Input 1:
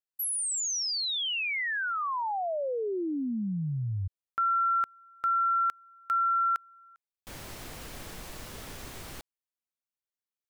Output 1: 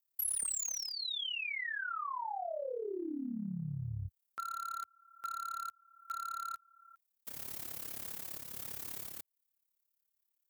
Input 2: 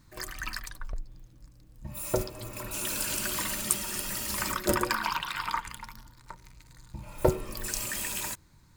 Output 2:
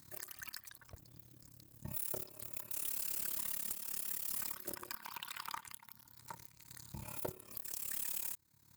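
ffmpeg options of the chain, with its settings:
-filter_complex "[0:a]highpass=f=79:w=0.5412,highpass=f=79:w=1.3066,aemphasis=mode=production:type=50fm,tremolo=f=35:d=0.824,asplit=2[s0][s1];[s1]acrusher=bits=3:mix=0:aa=0.000001,volume=0.447[s2];[s0][s2]amix=inputs=2:normalize=0,aeval=exprs='(tanh(1.26*val(0)+0.25)-tanh(0.25))/1.26':c=same,acompressor=threshold=0.0178:ratio=4:attack=0.22:release=363:knee=1:detection=rms,volume=1.12"

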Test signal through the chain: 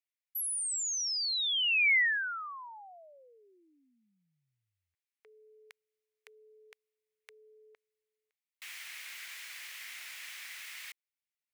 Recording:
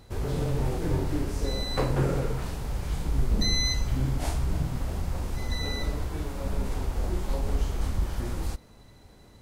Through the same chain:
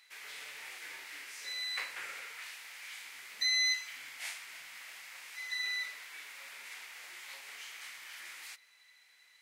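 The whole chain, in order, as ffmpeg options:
-af "highpass=f=2100:t=q:w=3.2,volume=0.596"

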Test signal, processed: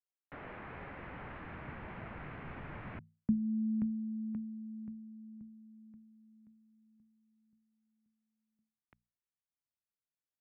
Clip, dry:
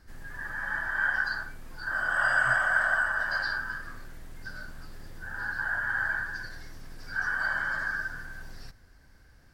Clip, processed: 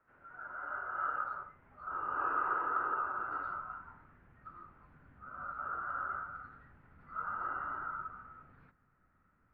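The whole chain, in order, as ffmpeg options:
-af "bandreject=f=60:t=h:w=6,bandreject=f=120:t=h:w=6,bandreject=f=180:t=h:w=6,bandreject=f=240:t=h:w=6,bandreject=f=300:t=h:w=6,bandreject=f=360:t=h:w=6,bandreject=f=420:t=h:w=6,bandreject=f=480:t=h:w=6,highpass=f=390:t=q:w=0.5412,highpass=f=390:t=q:w=1.307,lowpass=f=2500:t=q:w=0.5176,lowpass=f=2500:t=q:w=0.7071,lowpass=f=2500:t=q:w=1.932,afreqshift=-260,asubboost=boost=6:cutoff=180,volume=0.398"

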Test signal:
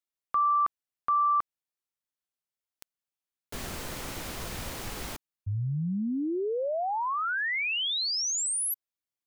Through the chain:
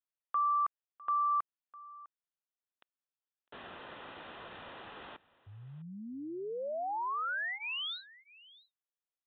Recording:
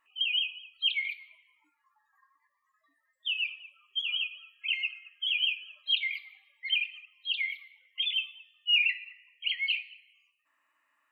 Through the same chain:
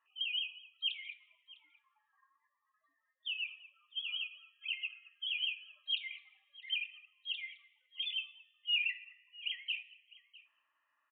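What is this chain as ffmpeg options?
-filter_complex "[0:a]bandreject=f=2200:w=6.2,aresample=8000,aresample=44100,highpass=f=1100:p=1,highshelf=f=2200:g=-10.5,asplit=2[s0][s1];[s1]aecho=0:1:654:0.0891[s2];[s0][s2]amix=inputs=2:normalize=0"

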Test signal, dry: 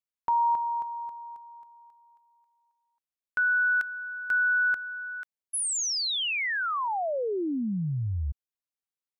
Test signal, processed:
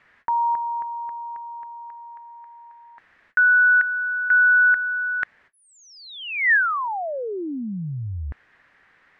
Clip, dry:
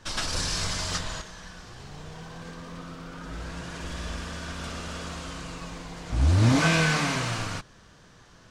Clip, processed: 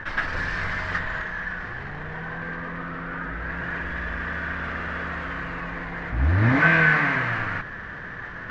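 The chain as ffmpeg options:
-af "areverse,acompressor=mode=upward:threshold=0.0282:ratio=2.5:attack=12:release=32:knee=2.83:detection=peak,areverse,lowpass=f=1800:t=q:w=4.9"

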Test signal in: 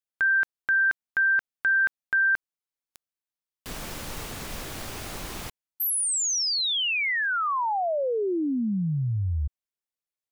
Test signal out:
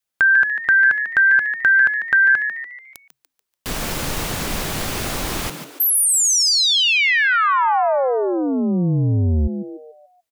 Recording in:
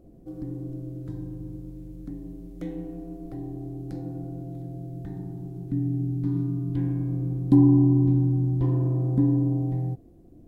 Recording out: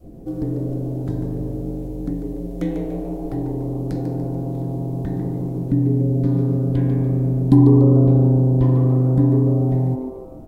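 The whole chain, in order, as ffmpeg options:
-filter_complex "[0:a]adynamicequalizer=threshold=0.0126:dfrequency=340:dqfactor=0.99:tfrequency=340:tqfactor=0.99:attack=5:release=100:ratio=0.375:range=3:mode=cutabove:tftype=bell,asplit=2[s0][s1];[s1]acompressor=threshold=0.02:ratio=6:attack=77:release=75,volume=0.708[s2];[s0][s2]amix=inputs=2:normalize=0,asplit=6[s3][s4][s5][s6][s7][s8];[s4]adelay=145,afreqshift=130,volume=0.355[s9];[s5]adelay=290,afreqshift=260,volume=0.15[s10];[s6]adelay=435,afreqshift=390,volume=0.0624[s11];[s7]adelay=580,afreqshift=520,volume=0.0263[s12];[s8]adelay=725,afreqshift=650,volume=0.0111[s13];[s3][s9][s10][s11][s12][s13]amix=inputs=6:normalize=0,volume=2.11"

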